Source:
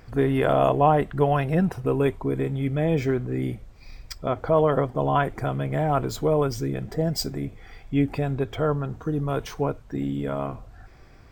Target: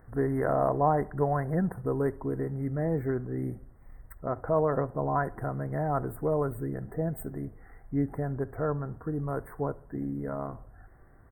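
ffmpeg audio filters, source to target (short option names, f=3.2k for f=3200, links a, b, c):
-filter_complex "[0:a]asuperstop=centerf=4200:order=20:qfactor=0.65,asplit=2[a][b];[b]adelay=69,lowpass=f=1.7k:p=1,volume=-21dB,asplit=2[c][d];[d]adelay=69,lowpass=f=1.7k:p=1,volume=0.53,asplit=2[e][f];[f]adelay=69,lowpass=f=1.7k:p=1,volume=0.53,asplit=2[g][h];[h]adelay=69,lowpass=f=1.7k:p=1,volume=0.53[i];[a][c][e][g][i]amix=inputs=5:normalize=0,volume=-6dB"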